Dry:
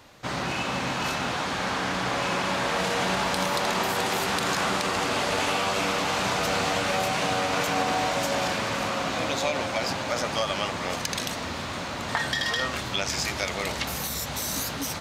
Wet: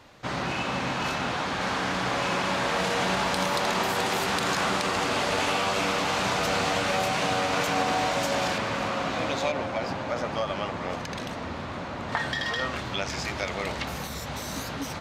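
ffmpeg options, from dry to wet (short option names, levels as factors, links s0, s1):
-af "asetnsamples=n=441:p=0,asendcmd='1.61 lowpass f 9000;8.58 lowpass f 3400;9.52 lowpass f 1400;12.12 lowpass f 2600',lowpass=f=4800:p=1"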